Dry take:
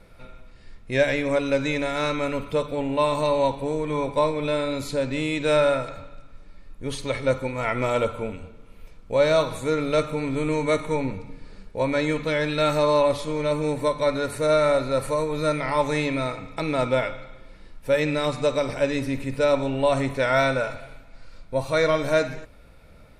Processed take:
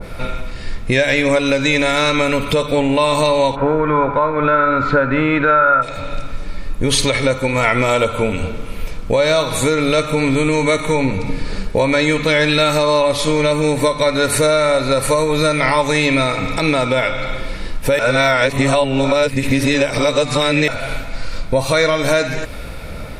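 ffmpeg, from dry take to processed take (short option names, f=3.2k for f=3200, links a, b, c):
-filter_complex "[0:a]asplit=3[a][b][c];[a]afade=t=out:st=3.55:d=0.02[d];[b]lowpass=f=1.4k:t=q:w=7.7,afade=t=in:st=3.55:d=0.02,afade=t=out:st=5.81:d=0.02[e];[c]afade=t=in:st=5.81:d=0.02[f];[d][e][f]amix=inputs=3:normalize=0,asplit=3[g][h][i];[g]atrim=end=17.992[j];[h]atrim=start=17.988:end=20.682,asetpts=PTS-STARTPTS,areverse[k];[i]atrim=start=20.678[l];[j][k]acrossfade=d=0.004:c1=hsin:c2=hsin[m];[m][l]acrossfade=d=0.004:c1=hsin:c2=hsin,acompressor=threshold=-34dB:ratio=6,alimiter=level_in=25.5dB:limit=-1dB:release=50:level=0:latency=1,adynamicequalizer=threshold=0.0501:dfrequency=1700:dqfactor=0.7:tfrequency=1700:tqfactor=0.7:attack=5:release=100:ratio=0.375:range=3:mode=boostabove:tftype=highshelf,volume=-4.5dB"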